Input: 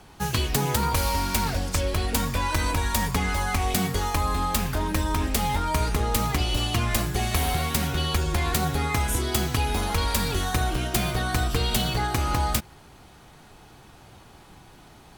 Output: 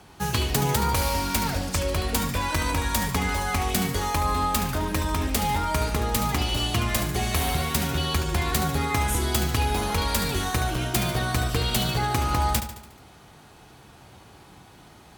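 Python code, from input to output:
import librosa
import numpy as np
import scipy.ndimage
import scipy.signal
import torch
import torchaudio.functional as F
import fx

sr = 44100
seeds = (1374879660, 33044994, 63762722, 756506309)

p1 = scipy.signal.sosfilt(scipy.signal.butter(2, 49.0, 'highpass', fs=sr, output='sos'), x)
y = p1 + fx.echo_feedback(p1, sr, ms=72, feedback_pct=54, wet_db=-10.5, dry=0)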